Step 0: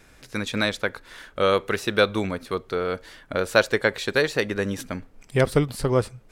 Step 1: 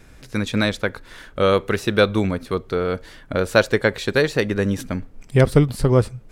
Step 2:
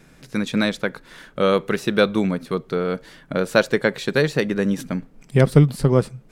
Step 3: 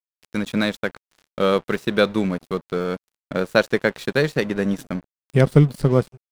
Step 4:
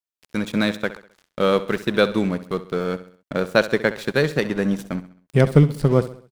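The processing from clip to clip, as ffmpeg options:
ffmpeg -i in.wav -af "lowshelf=frequency=310:gain=8.5,volume=1dB" out.wav
ffmpeg -i in.wav -af "lowshelf=frequency=120:width_type=q:width=3:gain=-7,volume=-1.5dB" out.wav
ffmpeg -i in.wav -af "aeval=exprs='sgn(val(0))*max(abs(val(0))-0.0168,0)':channel_layout=same" out.wav
ffmpeg -i in.wav -af "aecho=1:1:66|132|198|264:0.178|0.08|0.036|0.0162" out.wav

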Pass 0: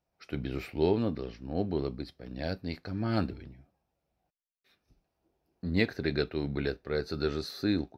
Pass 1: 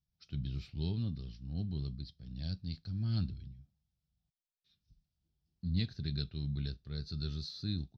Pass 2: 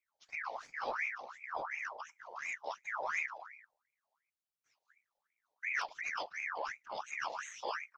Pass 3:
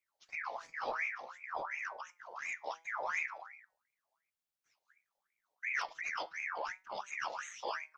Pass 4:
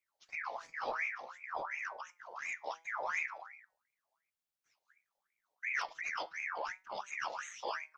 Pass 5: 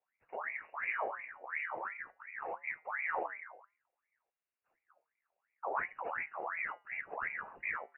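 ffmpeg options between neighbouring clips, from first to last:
ffmpeg -i in.wav -af "firequalizer=gain_entry='entry(150,0);entry(290,-18);entry(480,-26);entry(1400,-20);entry(2100,-22);entry(3300,-4);entry(5200,-4);entry(10000,-27)':delay=0.05:min_phase=1,volume=1dB" out.wav
ffmpeg -i in.wav -af "afftfilt=real='hypot(re,im)*cos(2*PI*random(0))':imag='hypot(re,im)*sin(2*PI*random(1))':win_size=512:overlap=0.75,asoftclip=type=hard:threshold=-31dB,aeval=exprs='val(0)*sin(2*PI*1500*n/s+1500*0.55/2.8*sin(2*PI*2.8*n/s))':channel_layout=same,volume=5.5dB" out.wav
ffmpeg -i in.wav -af "flanger=delay=5:depth=1.4:regen=88:speed=0.57:shape=triangular,volume=4.5dB" out.wav
ffmpeg -i in.wav -af anull out.wav
ffmpeg -i in.wav -af "lowpass=frequency=2500:width_type=q:width=0.5098,lowpass=frequency=2500:width_type=q:width=0.6013,lowpass=frequency=2500:width_type=q:width=0.9,lowpass=frequency=2500:width_type=q:width=2.563,afreqshift=-2900,volume=1dB" out.wav

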